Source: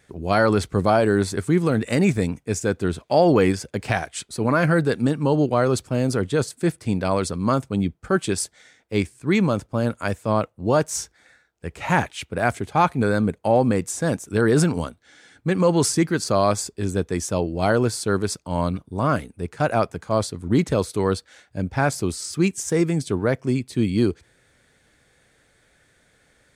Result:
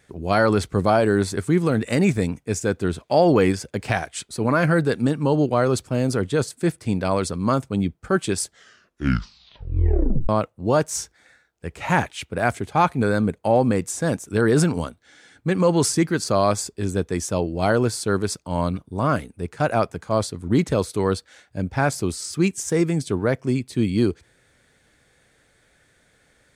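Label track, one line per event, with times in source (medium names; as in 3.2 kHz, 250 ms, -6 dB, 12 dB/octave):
8.430000	8.430000	tape stop 1.86 s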